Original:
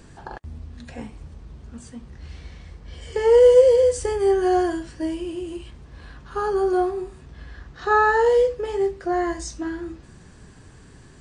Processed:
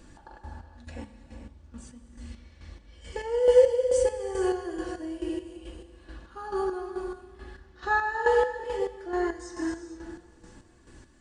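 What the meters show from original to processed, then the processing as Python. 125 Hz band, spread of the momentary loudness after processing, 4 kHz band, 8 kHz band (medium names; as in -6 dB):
no reading, 23 LU, -6.0 dB, -5.5 dB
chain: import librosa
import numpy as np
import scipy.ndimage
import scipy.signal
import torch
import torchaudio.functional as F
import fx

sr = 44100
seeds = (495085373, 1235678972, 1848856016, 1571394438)

p1 = x + 0.5 * np.pad(x, (int(3.5 * sr / 1000.0), 0))[:len(x)]
p2 = p1 + fx.echo_feedback(p1, sr, ms=513, feedback_pct=56, wet_db=-23.0, dry=0)
p3 = fx.rev_gated(p2, sr, seeds[0], gate_ms=490, shape='flat', drr_db=3.5)
p4 = fx.chopper(p3, sr, hz=2.3, depth_pct=60, duty_pct=40)
y = p4 * 10.0 ** (-6.0 / 20.0)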